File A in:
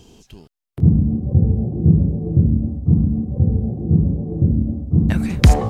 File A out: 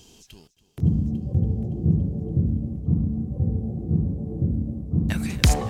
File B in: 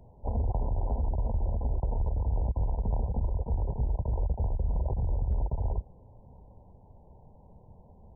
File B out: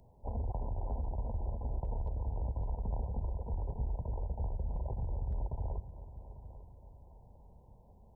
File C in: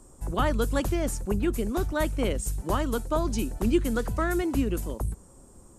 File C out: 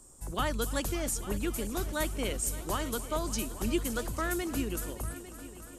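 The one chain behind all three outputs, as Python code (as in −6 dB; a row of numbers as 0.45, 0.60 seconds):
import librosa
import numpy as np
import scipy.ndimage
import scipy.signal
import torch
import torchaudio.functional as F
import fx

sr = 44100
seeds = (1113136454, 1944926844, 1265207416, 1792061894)

p1 = fx.high_shelf(x, sr, hz=2100.0, db=11.0)
p2 = p1 + fx.echo_heads(p1, sr, ms=283, heads='all three', feedback_pct=50, wet_db=-18, dry=0)
y = F.gain(torch.from_numpy(p2), -7.5).numpy()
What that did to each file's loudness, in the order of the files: −7.0, −7.0, −5.0 LU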